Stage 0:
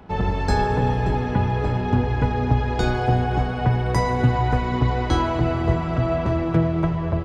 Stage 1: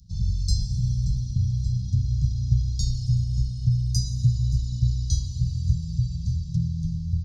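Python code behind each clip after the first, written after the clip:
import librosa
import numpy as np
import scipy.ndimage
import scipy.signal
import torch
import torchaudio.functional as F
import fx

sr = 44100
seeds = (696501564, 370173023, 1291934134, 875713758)

y = scipy.signal.sosfilt(scipy.signal.cheby2(4, 50, [330.0, 2300.0], 'bandstop', fs=sr, output='sos'), x)
y = fx.band_shelf(y, sr, hz=5100.0, db=9.5, octaves=1.0)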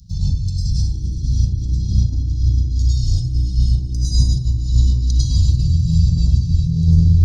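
y = fx.over_compress(x, sr, threshold_db=-28.0, ratio=-0.5)
y = fx.rev_plate(y, sr, seeds[0], rt60_s=0.66, hf_ratio=0.45, predelay_ms=90, drr_db=-9.0)
y = y * 10.0 ** (3.0 / 20.0)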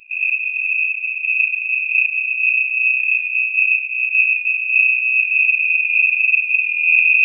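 y = fx.freq_invert(x, sr, carrier_hz=2600)
y = y * 10.0 ** (-3.0 / 20.0)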